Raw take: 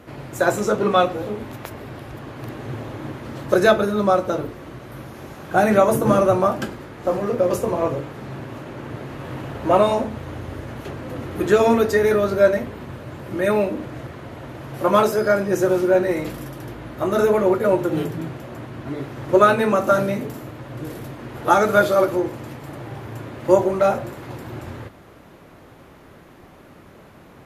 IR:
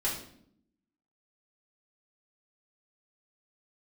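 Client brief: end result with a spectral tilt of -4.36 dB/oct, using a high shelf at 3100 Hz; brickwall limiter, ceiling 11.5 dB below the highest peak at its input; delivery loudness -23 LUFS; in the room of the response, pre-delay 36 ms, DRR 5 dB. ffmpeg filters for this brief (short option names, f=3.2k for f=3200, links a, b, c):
-filter_complex "[0:a]highshelf=f=3.1k:g=-8,alimiter=limit=-13.5dB:level=0:latency=1,asplit=2[a][b];[1:a]atrim=start_sample=2205,adelay=36[c];[b][c]afir=irnorm=-1:irlink=0,volume=-11.5dB[d];[a][d]amix=inputs=2:normalize=0,volume=1dB"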